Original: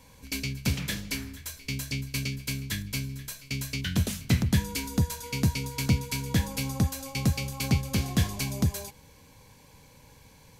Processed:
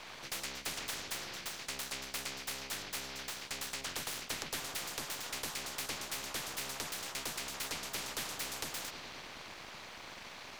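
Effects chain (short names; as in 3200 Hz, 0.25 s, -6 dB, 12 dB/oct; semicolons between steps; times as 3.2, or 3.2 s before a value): on a send: analogue delay 0.104 s, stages 4096, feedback 77%, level -21 dB; on the sum: full-wave rectifier; three-band isolator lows -13 dB, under 590 Hz, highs -19 dB, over 5100 Hz; spectral compressor 4:1; gain +1 dB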